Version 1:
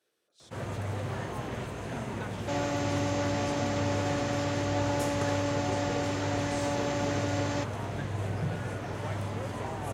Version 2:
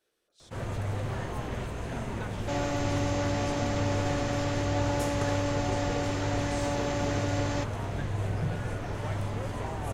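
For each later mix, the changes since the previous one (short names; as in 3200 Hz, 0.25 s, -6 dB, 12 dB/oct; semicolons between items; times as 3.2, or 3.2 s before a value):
master: remove HPF 95 Hz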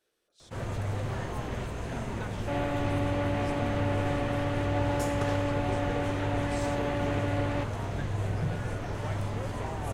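second sound: add LPF 3200 Hz 24 dB/oct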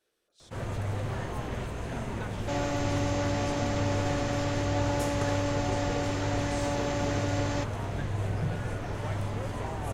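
second sound: remove LPF 3200 Hz 24 dB/oct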